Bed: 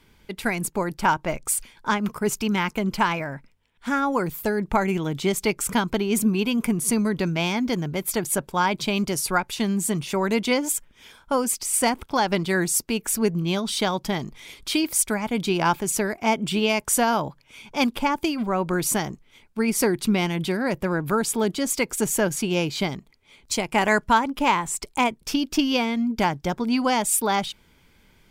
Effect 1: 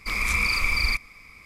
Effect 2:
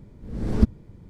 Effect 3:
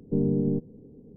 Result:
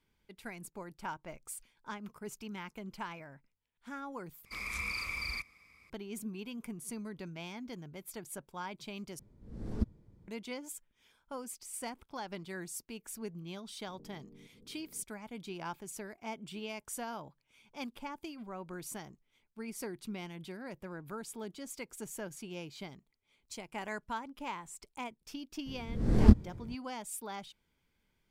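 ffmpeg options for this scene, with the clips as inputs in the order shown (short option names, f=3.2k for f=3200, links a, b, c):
-filter_complex "[2:a]asplit=2[a][b];[0:a]volume=-20dB[c];[1:a]highpass=53[d];[a]equalizer=f=2.3k:w=0.96:g=-2.5[e];[3:a]acompressor=threshold=-43dB:ratio=6:attack=3.2:release=140:knee=1:detection=peak[f];[b]asplit=2[g][h];[h]adelay=24,volume=-4dB[i];[g][i]amix=inputs=2:normalize=0[j];[c]asplit=3[k][l][m];[k]atrim=end=4.454[n];[d]atrim=end=1.45,asetpts=PTS-STARTPTS,volume=-13.5dB[o];[l]atrim=start=5.896:end=9.194[p];[e]atrim=end=1.09,asetpts=PTS-STARTPTS,volume=-14dB[q];[m]atrim=start=10.276[r];[f]atrim=end=1.16,asetpts=PTS-STARTPTS,volume=-12dB,afade=t=in:d=0.004:c=hsin,afade=t=out:st=1.156:d=0.004:c=hsin,adelay=13880[s];[j]atrim=end=1.09,asetpts=PTS-STARTPTS,volume=-2dB,afade=t=in:d=0.004:c=hsin,afade=t=out:st=1.086:d=0.004:c=hsin,adelay=25660[t];[n][o]acrossfade=d=0.004:c1=hsin:c2=hsin[u];[u][p]acrossfade=d=0.004:c1=hsin:c2=hsin[v];[v][q]acrossfade=d=0.004:c1=hsin:c2=hsin[w];[w][r]acrossfade=d=0.004:c1=hsin:c2=hsin[x];[x][s][t]amix=inputs=3:normalize=0"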